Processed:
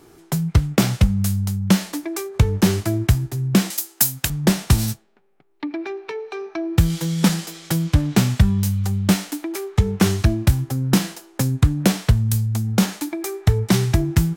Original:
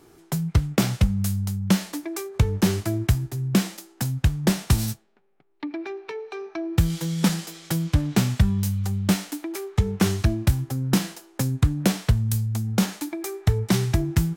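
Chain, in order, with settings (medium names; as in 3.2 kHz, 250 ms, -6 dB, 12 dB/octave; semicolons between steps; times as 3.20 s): 3.70–4.30 s: RIAA curve recording; trim +4 dB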